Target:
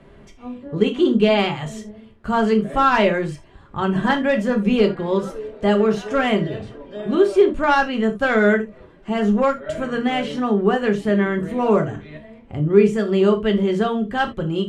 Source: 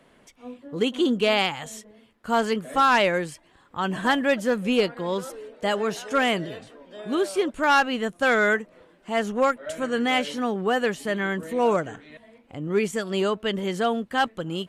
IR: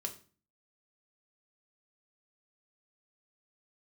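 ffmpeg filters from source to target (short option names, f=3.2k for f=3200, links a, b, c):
-filter_complex "[0:a]aemphasis=mode=reproduction:type=bsi,asplit=2[a][b];[b]acompressor=threshold=-32dB:ratio=6,volume=-2.5dB[c];[a][c]amix=inputs=2:normalize=0[d];[1:a]atrim=start_sample=2205,atrim=end_sample=3969[e];[d][e]afir=irnorm=-1:irlink=0,volume=2dB"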